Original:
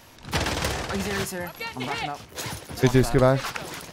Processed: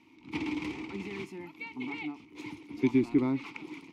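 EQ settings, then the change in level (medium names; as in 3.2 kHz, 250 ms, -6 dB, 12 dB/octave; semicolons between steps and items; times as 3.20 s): vowel filter u; peaking EQ 810 Hz -14 dB 0.53 oct; +6.0 dB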